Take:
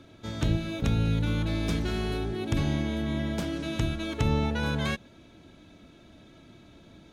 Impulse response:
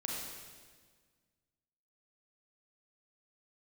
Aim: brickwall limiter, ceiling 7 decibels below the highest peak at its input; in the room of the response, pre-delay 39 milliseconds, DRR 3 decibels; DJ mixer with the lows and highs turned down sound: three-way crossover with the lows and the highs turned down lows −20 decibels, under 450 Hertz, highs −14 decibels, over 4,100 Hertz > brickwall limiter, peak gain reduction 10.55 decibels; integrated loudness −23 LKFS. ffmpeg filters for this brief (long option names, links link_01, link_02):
-filter_complex "[0:a]alimiter=limit=-20.5dB:level=0:latency=1,asplit=2[link_01][link_02];[1:a]atrim=start_sample=2205,adelay=39[link_03];[link_02][link_03]afir=irnorm=-1:irlink=0,volume=-5dB[link_04];[link_01][link_04]amix=inputs=2:normalize=0,acrossover=split=450 4100:gain=0.1 1 0.2[link_05][link_06][link_07];[link_05][link_06][link_07]amix=inputs=3:normalize=0,volume=18dB,alimiter=limit=-14dB:level=0:latency=1"